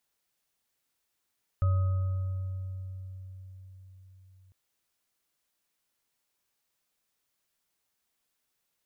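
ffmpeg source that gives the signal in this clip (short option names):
-f lavfi -i "aevalsrc='0.0891*pow(10,-3*t/4.93)*sin(2*PI*94.1*t)+0.00944*pow(10,-3*t/2.94)*sin(2*PI*566*t)+0.0126*pow(10,-3*t/1.93)*sin(2*PI*1260*t)':d=2.9:s=44100"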